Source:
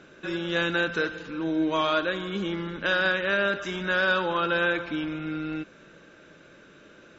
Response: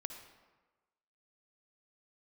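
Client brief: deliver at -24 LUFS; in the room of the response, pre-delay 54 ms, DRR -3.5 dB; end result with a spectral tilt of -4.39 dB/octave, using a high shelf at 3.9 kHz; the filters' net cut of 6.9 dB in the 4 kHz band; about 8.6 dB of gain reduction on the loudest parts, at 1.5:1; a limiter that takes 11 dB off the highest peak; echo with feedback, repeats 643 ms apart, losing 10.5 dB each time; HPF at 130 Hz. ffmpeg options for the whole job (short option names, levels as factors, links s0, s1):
-filter_complex "[0:a]highpass=130,highshelf=f=3900:g=-5,equalizer=f=4000:t=o:g=-6,acompressor=threshold=0.00501:ratio=1.5,alimiter=level_in=2.82:limit=0.0631:level=0:latency=1,volume=0.355,aecho=1:1:643|1286|1929:0.299|0.0896|0.0269,asplit=2[s0][s1];[1:a]atrim=start_sample=2205,adelay=54[s2];[s1][s2]afir=irnorm=-1:irlink=0,volume=1.88[s3];[s0][s3]amix=inputs=2:normalize=0,volume=4.22"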